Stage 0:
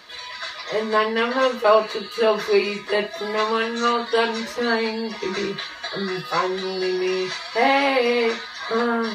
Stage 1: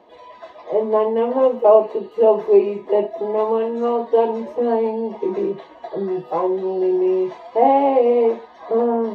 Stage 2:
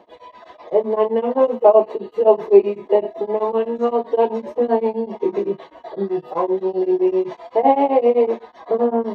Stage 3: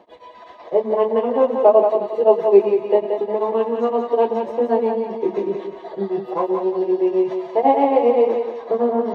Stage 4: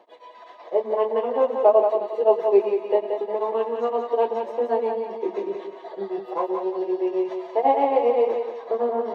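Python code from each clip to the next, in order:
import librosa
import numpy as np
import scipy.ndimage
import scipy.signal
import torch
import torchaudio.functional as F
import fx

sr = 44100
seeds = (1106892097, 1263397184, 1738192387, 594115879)

y1 = fx.curve_eq(x, sr, hz=(120.0, 320.0, 870.0, 1400.0, 3000.0, 4300.0, 6400.0), db=(0, 13, 12, -12, -8, -20, -16))
y1 = y1 * librosa.db_to_amplitude(-7.0)
y2 = y1 * np.abs(np.cos(np.pi * 7.8 * np.arange(len(y1)) / sr))
y2 = y2 * librosa.db_to_amplitude(3.0)
y3 = fx.echo_thinned(y2, sr, ms=178, feedback_pct=38, hz=270.0, wet_db=-5.0)
y3 = y3 * librosa.db_to_amplitude(-1.0)
y4 = scipy.signal.sosfilt(scipy.signal.butter(2, 370.0, 'highpass', fs=sr, output='sos'), y3)
y4 = y4 * librosa.db_to_amplitude(-3.0)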